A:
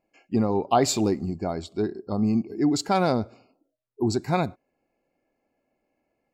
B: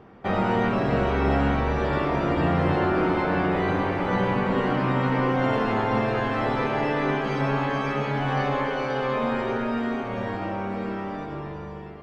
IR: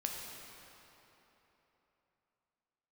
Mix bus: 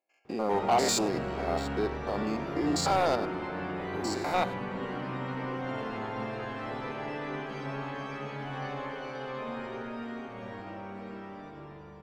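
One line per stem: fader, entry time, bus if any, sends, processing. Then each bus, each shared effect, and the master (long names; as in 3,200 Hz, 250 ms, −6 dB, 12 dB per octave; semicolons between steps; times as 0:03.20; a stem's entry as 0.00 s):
−4.0 dB, 0.00 s, no send, spectrum averaged block by block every 100 ms; high-pass filter 620 Hz 12 dB per octave; leveller curve on the samples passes 2
−12.5 dB, 0.25 s, no send, spectral tilt +1.5 dB per octave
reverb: not used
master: low-shelf EQ 460 Hz +4.5 dB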